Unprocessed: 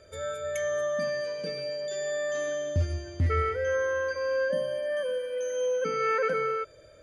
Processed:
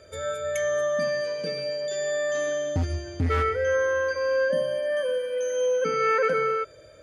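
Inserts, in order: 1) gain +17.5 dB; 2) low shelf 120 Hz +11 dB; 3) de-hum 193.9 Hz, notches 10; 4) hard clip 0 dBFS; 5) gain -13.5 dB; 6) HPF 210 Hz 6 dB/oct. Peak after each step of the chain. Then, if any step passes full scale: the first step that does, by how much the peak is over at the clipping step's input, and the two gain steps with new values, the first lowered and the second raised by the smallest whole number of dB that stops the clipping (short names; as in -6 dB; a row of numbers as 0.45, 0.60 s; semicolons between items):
+1.5, +6.5, +6.5, 0.0, -13.5, -13.0 dBFS; step 1, 6.5 dB; step 1 +10.5 dB, step 5 -6.5 dB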